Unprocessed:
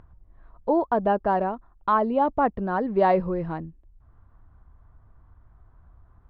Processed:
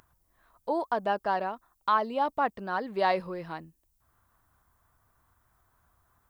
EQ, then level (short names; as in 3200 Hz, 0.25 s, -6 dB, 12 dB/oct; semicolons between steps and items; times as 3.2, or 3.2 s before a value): tone controls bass +3 dB, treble +8 dB; tilt +4.5 dB/oct; -3.5 dB